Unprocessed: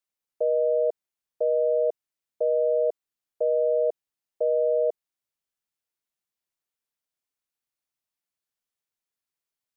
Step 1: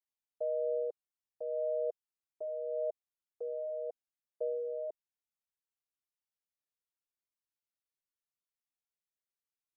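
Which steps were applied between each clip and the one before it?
flanger whose copies keep moving one way falling 0.82 Hz
level −7.5 dB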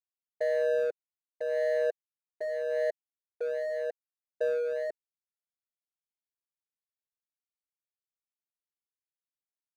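running median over 41 samples
level +8 dB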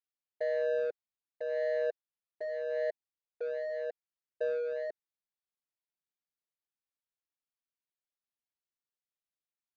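low-pass filter 5,200 Hz 24 dB per octave
level −3.5 dB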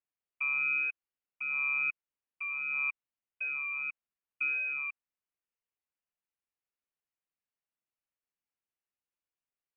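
voice inversion scrambler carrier 3,000 Hz

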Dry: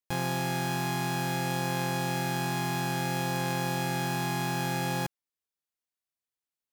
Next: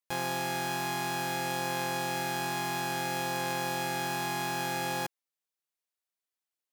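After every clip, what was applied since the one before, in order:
bass and treble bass −11 dB, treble 0 dB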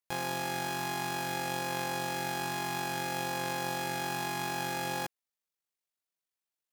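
amplitude modulation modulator 48 Hz, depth 25%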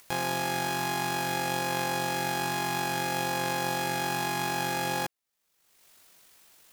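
upward compression, threshold −39 dBFS
level +4.5 dB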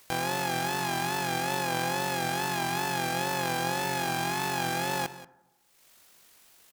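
tape wow and flutter 81 cents
single-tap delay 184 ms −16 dB
on a send at −17.5 dB: convolution reverb RT60 1.1 s, pre-delay 8 ms

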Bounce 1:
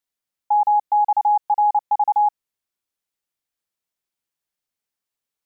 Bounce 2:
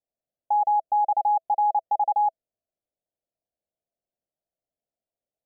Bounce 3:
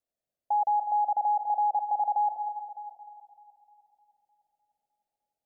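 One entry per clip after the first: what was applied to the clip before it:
drawn EQ curve 410 Hz 0 dB, 660 Hz +10 dB, 1,200 Hz −27 dB
echo with a time of its own for lows and highs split 830 Hz, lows 201 ms, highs 304 ms, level −12 dB; brickwall limiter −21 dBFS, peak gain reduction 7 dB

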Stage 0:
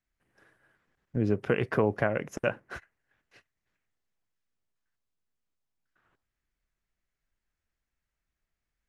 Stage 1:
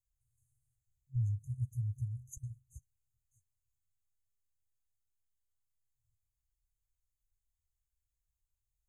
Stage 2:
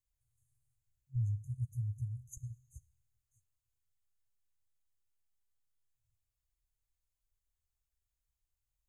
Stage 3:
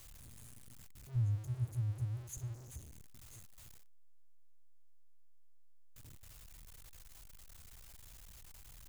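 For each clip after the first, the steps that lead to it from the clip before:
brick-wall band-stop 130–6,200 Hz
four-comb reverb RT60 0.99 s, combs from 26 ms, DRR 19 dB; level −1 dB
converter with a step at zero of −47.5 dBFS

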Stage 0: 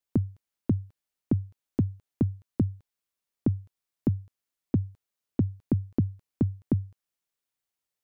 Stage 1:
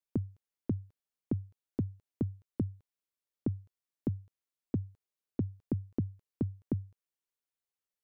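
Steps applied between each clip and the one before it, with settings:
parametric band 440 Hz +3.5 dB 0.77 octaves
level −8 dB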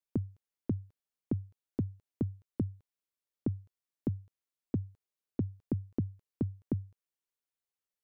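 no processing that can be heard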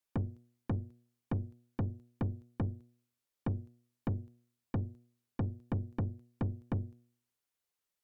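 hum removal 120.1 Hz, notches 6
tube saturation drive 36 dB, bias 0.55
level +7 dB

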